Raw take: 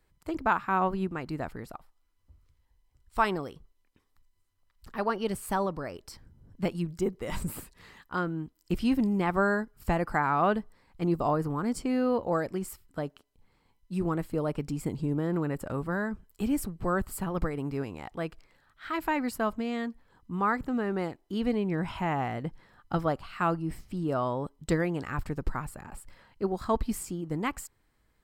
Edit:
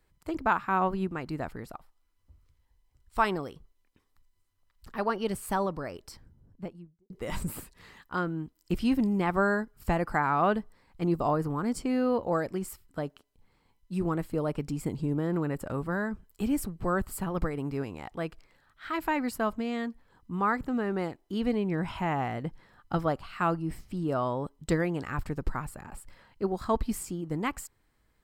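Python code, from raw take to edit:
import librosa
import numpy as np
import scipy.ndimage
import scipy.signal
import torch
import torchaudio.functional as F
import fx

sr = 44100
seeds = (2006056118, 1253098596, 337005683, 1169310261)

y = fx.studio_fade_out(x, sr, start_s=6.0, length_s=1.1)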